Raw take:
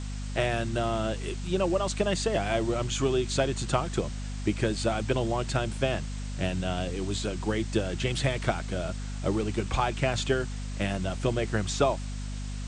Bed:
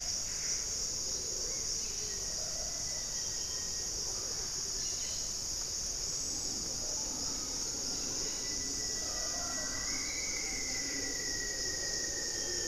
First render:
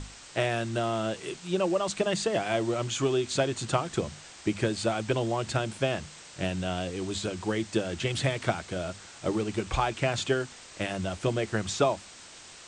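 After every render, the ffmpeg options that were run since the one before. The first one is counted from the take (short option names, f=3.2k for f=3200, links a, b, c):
-af "bandreject=f=50:t=h:w=6,bandreject=f=100:t=h:w=6,bandreject=f=150:t=h:w=6,bandreject=f=200:t=h:w=6,bandreject=f=250:t=h:w=6"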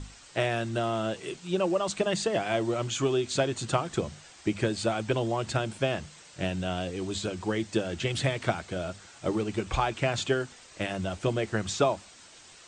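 -af "afftdn=nr=6:nf=-49"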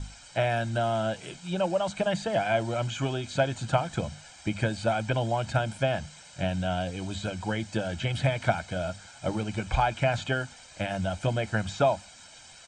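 -filter_complex "[0:a]aecho=1:1:1.3:0.67,acrossover=split=2900[a][b];[b]acompressor=threshold=-41dB:ratio=4:attack=1:release=60[c];[a][c]amix=inputs=2:normalize=0"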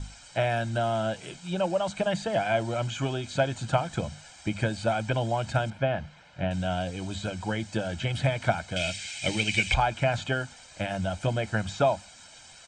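-filter_complex "[0:a]asettb=1/sr,asplit=3[a][b][c];[a]atrim=end=5.704[d];[b]atrim=start=5.7:end=6.51,asetpts=PTS-STARTPTS,afade=t=in:d=0.004:c=qsin,afade=t=out:st=0.806:d=0.004:c=qsin,lowpass=2.6k[e];[c]atrim=start=6.506[f];[d][e]acrossfade=d=0.004:c1=hsin:c2=qsin[g];[g][f]acrossfade=d=0.004:c1=qsin:c2=hsin,asettb=1/sr,asplit=3[h][i][j];[h]atrim=end=8.764[k];[i]atrim=start=8.76:end=9.74,asetpts=PTS-STARTPTS,afade=t=in:d=0.004:c=qsin,afade=t=out:st=0.976:d=0.004:c=qsin,highshelf=f=1.7k:t=q:w=3:g=11[l];[j]atrim=start=9.736[m];[k][l]acrossfade=d=0.004:c1=hsin:c2=qsin[n];[n][m]acrossfade=d=0.004:c1=qsin:c2=hsin"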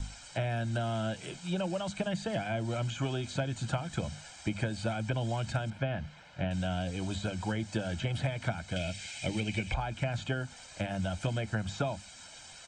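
-filter_complex "[0:a]acrossover=split=340|1300[a][b][c];[a]acompressor=threshold=-30dB:ratio=4[d];[b]acompressor=threshold=-39dB:ratio=4[e];[c]acompressor=threshold=-41dB:ratio=4[f];[d][e][f]amix=inputs=3:normalize=0"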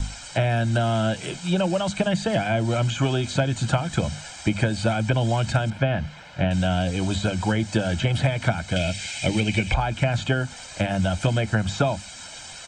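-af "volume=10.5dB"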